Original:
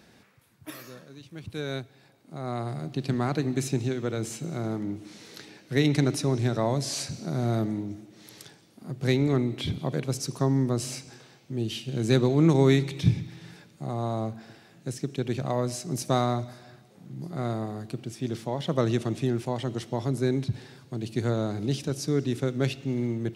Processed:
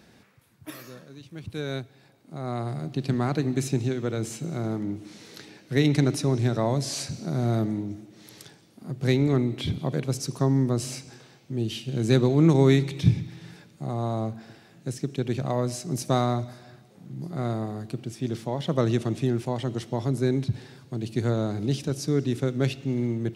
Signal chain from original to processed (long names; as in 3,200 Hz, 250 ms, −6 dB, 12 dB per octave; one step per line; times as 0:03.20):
low-shelf EQ 350 Hz +2.5 dB